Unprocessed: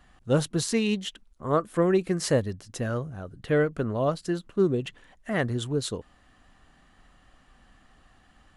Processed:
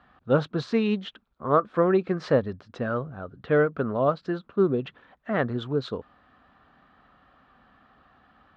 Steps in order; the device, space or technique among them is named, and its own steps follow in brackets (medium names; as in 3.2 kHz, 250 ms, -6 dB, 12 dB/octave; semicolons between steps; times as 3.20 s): guitar cabinet (cabinet simulation 100–3400 Hz, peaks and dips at 110 Hz -6 dB, 170 Hz -4 dB, 330 Hz -4 dB, 1.3 kHz +5 dB, 2 kHz -6 dB, 2.9 kHz -7 dB); trim +3 dB